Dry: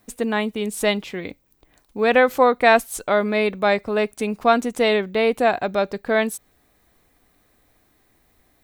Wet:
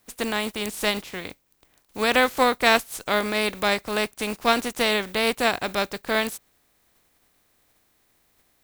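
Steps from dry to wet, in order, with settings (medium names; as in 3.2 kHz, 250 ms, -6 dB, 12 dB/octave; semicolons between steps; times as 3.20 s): spectral contrast reduction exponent 0.53; trim -4 dB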